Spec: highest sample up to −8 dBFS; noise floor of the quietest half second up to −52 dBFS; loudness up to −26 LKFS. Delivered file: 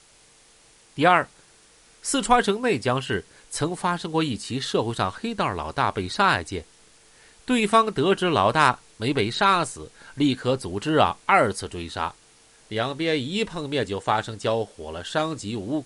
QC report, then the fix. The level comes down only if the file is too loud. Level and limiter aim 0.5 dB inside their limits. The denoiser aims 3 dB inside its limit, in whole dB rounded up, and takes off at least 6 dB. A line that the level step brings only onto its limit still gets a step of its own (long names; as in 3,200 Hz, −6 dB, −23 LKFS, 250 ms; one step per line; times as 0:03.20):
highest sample −4.0 dBFS: out of spec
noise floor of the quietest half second −55 dBFS: in spec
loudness −23.5 LKFS: out of spec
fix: level −3 dB
brickwall limiter −8.5 dBFS